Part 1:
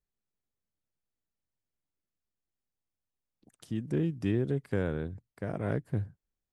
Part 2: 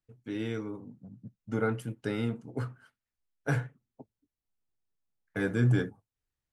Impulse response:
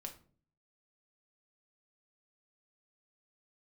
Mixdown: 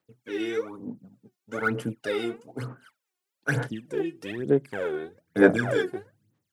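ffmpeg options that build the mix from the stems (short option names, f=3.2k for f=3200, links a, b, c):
-filter_complex "[0:a]highpass=310,volume=-0.5dB,asplit=2[a][b];[b]volume=-9dB[c];[1:a]highpass=270,volume=3dB[d];[2:a]atrim=start_sample=2205[e];[c][e]afir=irnorm=-1:irlink=0[f];[a][d][f]amix=inputs=3:normalize=0,aphaser=in_gain=1:out_gain=1:delay=2.8:decay=0.8:speed=1.1:type=sinusoidal"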